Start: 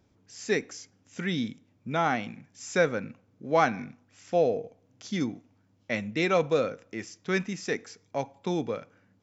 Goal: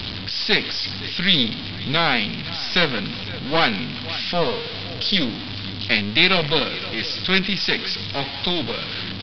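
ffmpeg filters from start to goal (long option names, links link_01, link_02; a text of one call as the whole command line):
ffmpeg -i in.wav -filter_complex "[0:a]aeval=exprs='val(0)+0.5*0.0266*sgn(val(0))':channel_layout=same,acrossover=split=230[link_01][link_02];[link_01]acontrast=87[link_03];[link_03][link_02]amix=inputs=2:normalize=0,highshelf=frequency=2600:gain=10,bandreject=frequency=540:width=18,aecho=1:1:518:0.15,aeval=exprs='0.668*(cos(1*acos(clip(val(0)/0.668,-1,1)))-cos(1*PI/2))+0.0944*(cos(8*acos(clip(val(0)/0.668,-1,1)))-cos(8*PI/2))':channel_layout=same,aresample=11025,aresample=44100,areverse,acompressor=mode=upward:threshold=-28dB:ratio=2.5,areverse,equalizer=frequency=3600:width=0.99:gain=13,volume=-1.5dB" out.wav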